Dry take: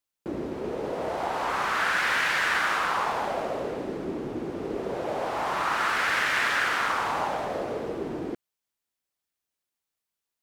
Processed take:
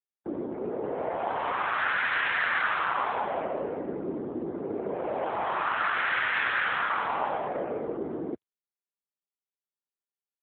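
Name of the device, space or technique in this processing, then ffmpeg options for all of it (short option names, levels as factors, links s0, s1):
mobile call with aggressive noise cancelling: -af "highpass=130,afftdn=nr=23:nf=-46" -ar 8000 -c:a libopencore_amrnb -b:a 7950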